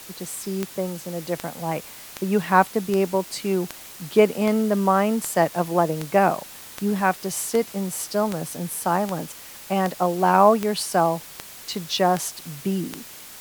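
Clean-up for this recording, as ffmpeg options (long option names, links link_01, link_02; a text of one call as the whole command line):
ffmpeg -i in.wav -af "adeclick=threshold=4,afftdn=noise_reduction=25:noise_floor=-41" out.wav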